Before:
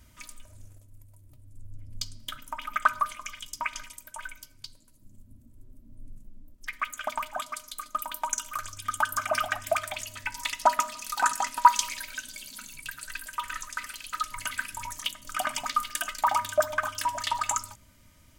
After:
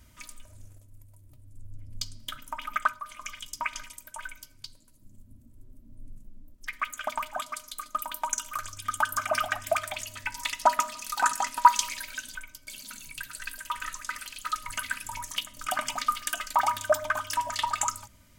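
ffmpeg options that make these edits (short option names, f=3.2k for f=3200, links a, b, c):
-filter_complex "[0:a]asplit=4[a][b][c][d];[a]atrim=end=3.01,asetpts=PTS-STARTPTS,afade=t=out:st=2.77:d=0.24:silence=0.199526[e];[b]atrim=start=3.01:end=12.352,asetpts=PTS-STARTPTS,afade=t=in:d=0.24:silence=0.199526[f];[c]atrim=start=4.228:end=4.552[g];[d]atrim=start=12.348[h];[e][f]concat=n=2:v=0:a=1[i];[i][g]acrossfade=d=0.004:c1=hsin:c2=hsin[j];[j][h]acrossfade=d=0.004:c1=hsin:c2=hsin"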